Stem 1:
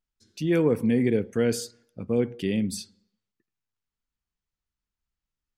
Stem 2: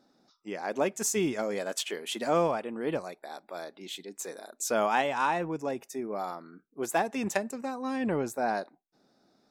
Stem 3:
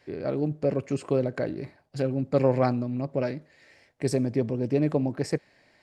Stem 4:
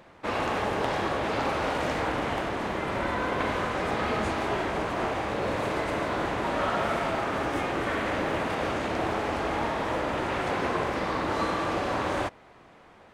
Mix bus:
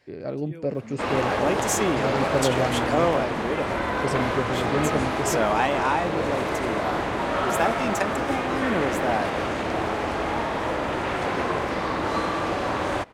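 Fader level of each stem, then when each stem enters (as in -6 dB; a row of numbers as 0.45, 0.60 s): -19.5, +3.0, -2.0, +2.5 dB; 0.00, 0.65, 0.00, 0.75 s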